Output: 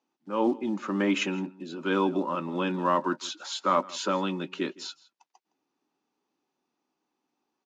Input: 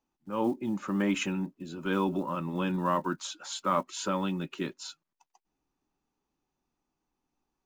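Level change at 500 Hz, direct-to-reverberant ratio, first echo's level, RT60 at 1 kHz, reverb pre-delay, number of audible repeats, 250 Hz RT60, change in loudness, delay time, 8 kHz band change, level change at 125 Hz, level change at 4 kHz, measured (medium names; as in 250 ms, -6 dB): +4.5 dB, no reverb, -21.5 dB, no reverb, no reverb, 1, no reverb, +3.0 dB, 163 ms, -0.5 dB, -2.5 dB, +4.5 dB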